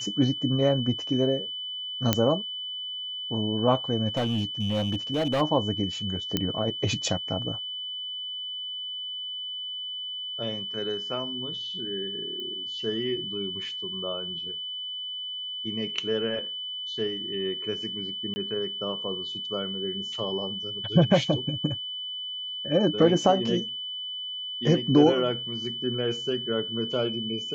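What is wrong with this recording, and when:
whistle 3,000 Hz −32 dBFS
0:02.13: click −4 dBFS
0:04.08–0:05.42: clipping −21.5 dBFS
0:06.37: click −10 dBFS
0:12.40: click −25 dBFS
0:18.34–0:18.36: drop-out 20 ms

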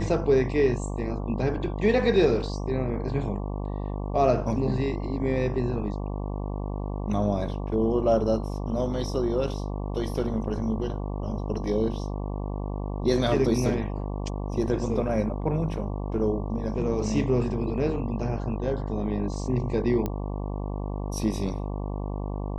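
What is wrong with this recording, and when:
mains buzz 50 Hz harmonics 23 −31 dBFS
0:20.06: click −16 dBFS

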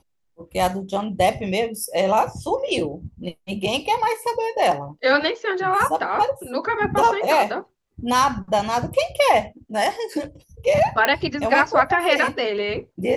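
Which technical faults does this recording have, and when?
0:11.05: click −4 dBFS

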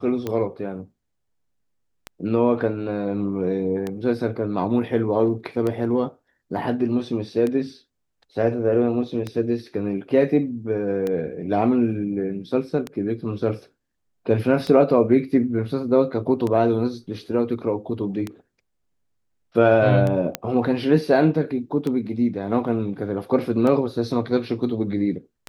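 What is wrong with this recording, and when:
scratch tick 33 1/3 rpm −14 dBFS
0:20.35: click −7 dBFS

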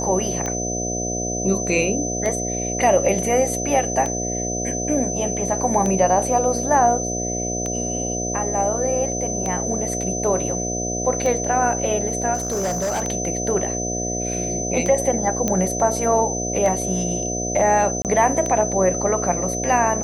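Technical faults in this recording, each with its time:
mains buzz 60 Hz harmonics 12 −27 dBFS
scratch tick 33 1/3 rpm −12 dBFS
whistle 6,100 Hz −26 dBFS
0:12.34–0:13.03: clipping −19.5 dBFS
0:15.48: click −7 dBFS
0:18.02–0:18.05: drop-out 28 ms

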